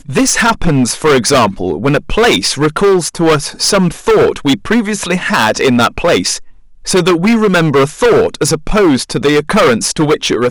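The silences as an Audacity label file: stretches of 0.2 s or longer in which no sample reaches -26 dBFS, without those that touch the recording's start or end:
6.500000	6.840000	silence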